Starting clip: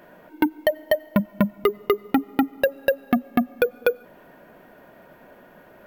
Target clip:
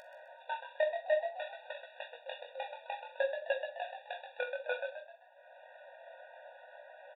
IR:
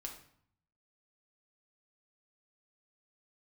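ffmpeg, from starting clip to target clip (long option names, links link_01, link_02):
-filter_complex "[0:a]bandreject=frequency=60:width_type=h:width=6,bandreject=frequency=120:width_type=h:width=6,afwtdn=0.02,lowshelf=frequency=150:width_type=q:width=3:gain=-6.5,acompressor=mode=upward:threshold=-33dB:ratio=2.5,alimiter=limit=-13dB:level=0:latency=1:release=105,acompressor=threshold=-27dB:ratio=2.5,atempo=0.82,aresample=8000,acrusher=bits=3:mode=log:mix=0:aa=0.000001,aresample=44100,flanger=delay=17.5:depth=6.6:speed=0.57,asplit=5[link_01][link_02][link_03][link_04][link_05];[link_02]adelay=129,afreqshift=61,volume=-8dB[link_06];[link_03]adelay=258,afreqshift=122,volume=-16.4dB[link_07];[link_04]adelay=387,afreqshift=183,volume=-24.8dB[link_08];[link_05]adelay=516,afreqshift=244,volume=-33.2dB[link_09];[link_01][link_06][link_07][link_08][link_09]amix=inputs=5:normalize=0,asplit=2[link_10][link_11];[1:a]atrim=start_sample=2205,asetrate=70560,aresample=44100,adelay=44[link_12];[link_11][link_12]afir=irnorm=-1:irlink=0,volume=-4dB[link_13];[link_10][link_13]amix=inputs=2:normalize=0,afftfilt=real='re*eq(mod(floor(b*sr/1024/480),2),1)':imag='im*eq(mod(floor(b*sr/1024/480),2),1)':win_size=1024:overlap=0.75"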